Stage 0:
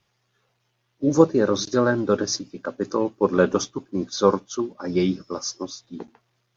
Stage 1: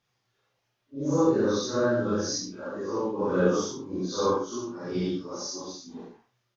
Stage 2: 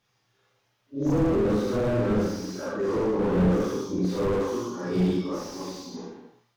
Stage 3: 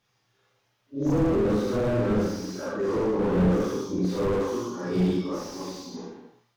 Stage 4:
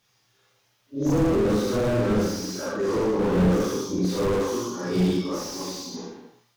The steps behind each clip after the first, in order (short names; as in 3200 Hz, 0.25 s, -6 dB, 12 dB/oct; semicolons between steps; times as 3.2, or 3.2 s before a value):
phase scrambler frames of 0.2 s; dynamic EQ 2400 Hz, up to -6 dB, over -52 dBFS, Q 3.4; early reflections 43 ms -6 dB, 71 ms -7 dB; gain -6 dB
non-linear reverb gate 0.31 s falling, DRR 2 dB; slew limiter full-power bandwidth 22 Hz; gain +3.5 dB
nothing audible
high shelf 3500 Hz +9 dB; gain +1.5 dB